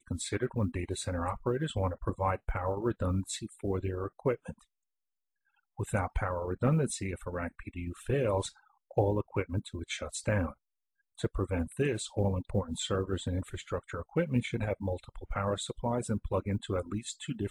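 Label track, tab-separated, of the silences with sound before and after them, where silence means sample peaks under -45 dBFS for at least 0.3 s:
4.520000	5.790000	silence
8.500000	8.910000	silence
10.520000	11.190000	silence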